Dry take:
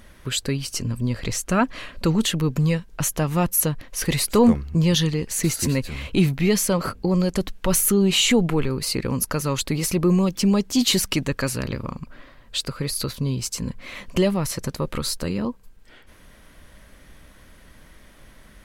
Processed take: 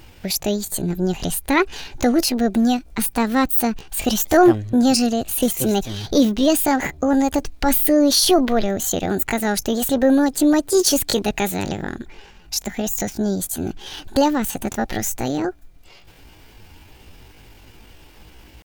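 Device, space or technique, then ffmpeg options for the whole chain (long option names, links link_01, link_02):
chipmunk voice: -af "asetrate=66075,aresample=44100,atempo=0.66742,volume=3dB"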